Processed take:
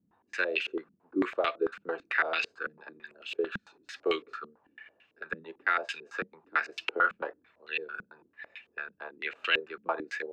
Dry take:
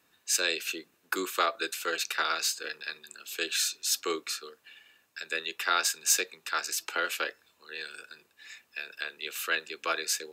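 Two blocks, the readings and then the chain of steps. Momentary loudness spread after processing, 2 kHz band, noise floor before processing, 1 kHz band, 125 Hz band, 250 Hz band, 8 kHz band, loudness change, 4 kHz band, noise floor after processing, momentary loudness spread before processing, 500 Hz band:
16 LU, +1.0 dB, -70 dBFS, -0.5 dB, n/a, +5.5 dB, -29.0 dB, -2.5 dB, -7.5 dB, -73 dBFS, 15 LU, +3.5 dB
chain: limiter -19.5 dBFS, peak gain reduction 10.5 dB; stepped low-pass 9 Hz 200–2800 Hz

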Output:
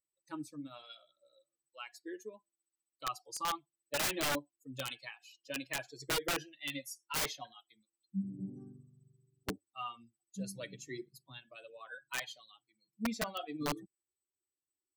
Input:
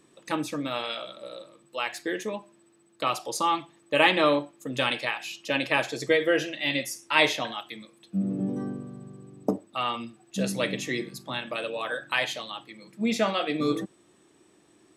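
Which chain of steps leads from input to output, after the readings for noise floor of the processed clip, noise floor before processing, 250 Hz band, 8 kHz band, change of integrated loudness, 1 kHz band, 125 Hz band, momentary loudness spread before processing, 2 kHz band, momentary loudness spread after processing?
under -85 dBFS, -61 dBFS, -13.0 dB, -3.0 dB, -12.0 dB, -13.0 dB, -11.0 dB, 16 LU, -14.0 dB, 17 LU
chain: per-bin expansion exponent 2; wrapped overs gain 20.5 dB; gain -7 dB

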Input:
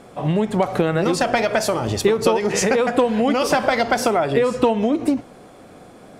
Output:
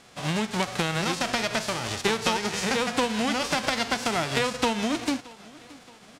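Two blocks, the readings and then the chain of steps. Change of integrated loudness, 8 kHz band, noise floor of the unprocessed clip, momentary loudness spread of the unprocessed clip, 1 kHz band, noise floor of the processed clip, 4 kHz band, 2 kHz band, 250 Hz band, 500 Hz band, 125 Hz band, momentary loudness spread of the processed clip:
-7.0 dB, -3.5 dB, -44 dBFS, 3 LU, -6.5 dB, -51 dBFS, +1.5 dB, -2.5 dB, -8.0 dB, -12.0 dB, -7.5 dB, 4 LU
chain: spectral whitening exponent 0.3; LPF 6400 Hz 12 dB/oct; feedback echo 0.623 s, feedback 47%, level -22 dB; gain -7.5 dB

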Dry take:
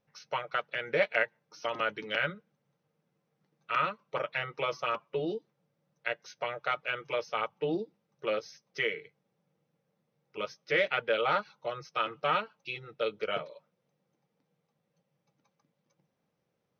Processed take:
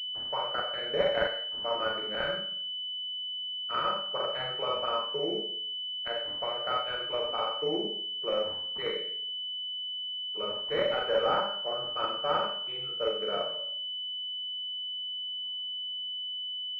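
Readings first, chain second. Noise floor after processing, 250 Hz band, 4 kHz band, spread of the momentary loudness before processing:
-36 dBFS, 0.0 dB, +14.5 dB, 11 LU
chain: low shelf 280 Hz -8.5 dB; Schroeder reverb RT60 0.57 s, combs from 30 ms, DRR -1.5 dB; pulse-width modulation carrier 3000 Hz

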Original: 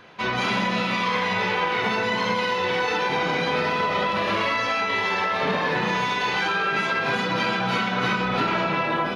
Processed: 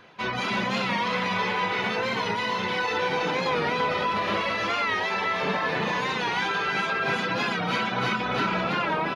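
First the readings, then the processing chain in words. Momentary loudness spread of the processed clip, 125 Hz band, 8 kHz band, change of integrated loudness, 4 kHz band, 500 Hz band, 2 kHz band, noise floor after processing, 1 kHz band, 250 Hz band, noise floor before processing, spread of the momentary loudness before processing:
1 LU, -3.0 dB, -2.5 dB, -2.5 dB, -2.5 dB, -3.0 dB, -2.5 dB, -29 dBFS, -2.5 dB, -3.0 dB, -26 dBFS, 1 LU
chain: reverb removal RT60 0.54 s; echo 0.329 s -3 dB; record warp 45 rpm, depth 100 cents; gain -3 dB

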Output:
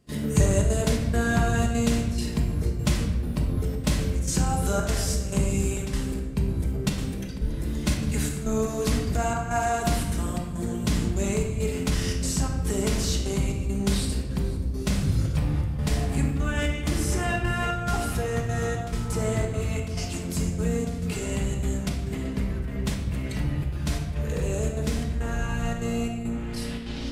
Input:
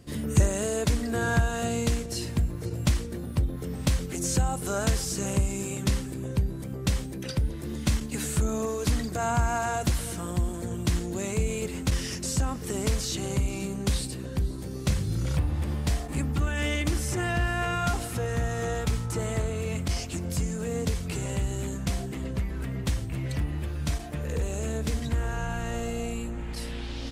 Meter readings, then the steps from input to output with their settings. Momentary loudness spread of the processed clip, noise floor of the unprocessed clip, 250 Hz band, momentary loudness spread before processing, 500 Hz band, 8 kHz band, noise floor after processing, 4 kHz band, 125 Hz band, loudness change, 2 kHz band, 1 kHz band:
6 LU, -36 dBFS, +3.5 dB, 5 LU, +2.5 dB, +0.5 dB, -32 dBFS, +1.0 dB, +2.0 dB, +2.5 dB, +1.0 dB, +1.5 dB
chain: step gate ".xxxxxx.xxx." 172 bpm -12 dB; shoebox room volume 740 m³, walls mixed, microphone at 1.4 m

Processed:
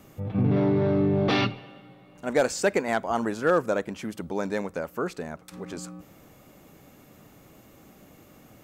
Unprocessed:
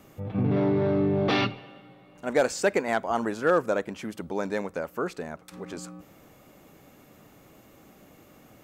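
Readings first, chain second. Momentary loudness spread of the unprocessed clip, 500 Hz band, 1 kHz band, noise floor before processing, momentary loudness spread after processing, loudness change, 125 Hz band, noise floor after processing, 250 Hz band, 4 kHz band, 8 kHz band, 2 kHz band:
15 LU, 0.0 dB, 0.0 dB, -55 dBFS, 16 LU, +1.0 dB, +2.5 dB, -54 dBFS, +1.5 dB, +1.0 dB, +2.0 dB, 0.0 dB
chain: tone controls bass +3 dB, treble +2 dB

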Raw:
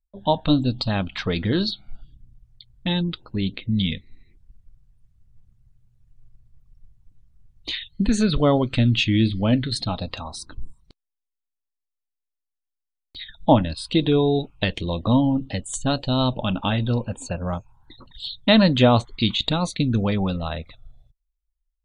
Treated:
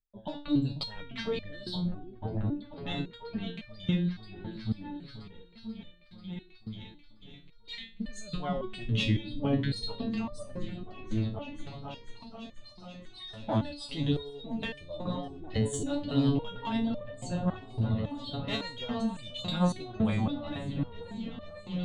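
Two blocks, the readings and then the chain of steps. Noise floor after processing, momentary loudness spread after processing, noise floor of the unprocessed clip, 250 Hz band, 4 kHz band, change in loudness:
-53 dBFS, 17 LU, -83 dBFS, -9.0 dB, -11.5 dB, -11.5 dB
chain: one diode to ground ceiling -11 dBFS; high shelf 6900 Hz -6 dB; in parallel at -1 dB: negative-ratio compressor -25 dBFS; on the sum: tremolo 11 Hz, depth 45%; on a send: repeats that get brighter 0.488 s, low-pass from 200 Hz, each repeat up 1 oct, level 0 dB; on the sum: stepped resonator 3.6 Hz 110–600 Hz

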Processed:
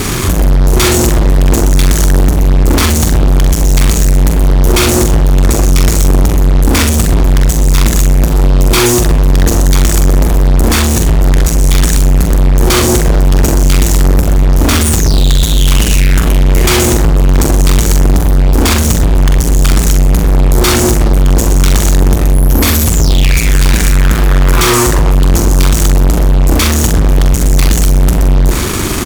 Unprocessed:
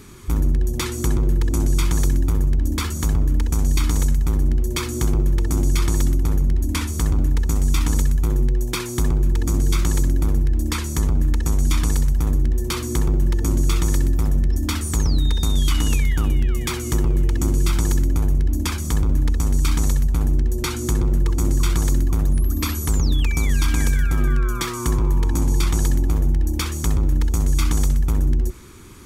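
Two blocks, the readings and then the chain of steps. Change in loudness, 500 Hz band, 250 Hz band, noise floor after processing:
+11.5 dB, +16.5 dB, +12.5 dB, -11 dBFS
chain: in parallel at 0 dB: limiter -20.5 dBFS, peak gain reduction 11.5 dB; on the sum: fuzz box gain 37 dB, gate -40 dBFS; doubler 44 ms -6 dB; gain +5 dB

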